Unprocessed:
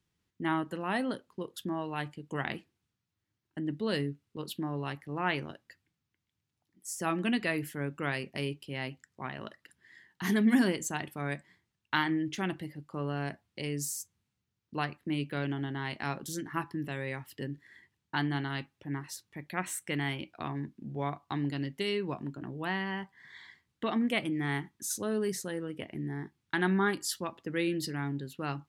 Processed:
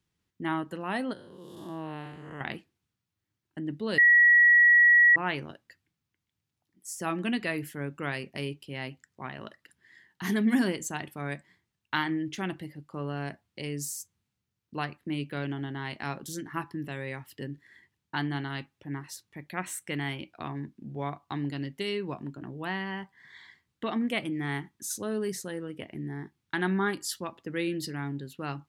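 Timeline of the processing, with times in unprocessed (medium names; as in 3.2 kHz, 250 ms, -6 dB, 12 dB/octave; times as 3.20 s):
1.13–2.41 s: spectral blur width 250 ms
3.98–5.16 s: bleep 1.92 kHz -15 dBFS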